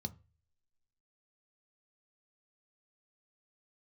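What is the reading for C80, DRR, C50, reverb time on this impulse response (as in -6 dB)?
27.5 dB, 9.0 dB, 22.0 dB, 0.30 s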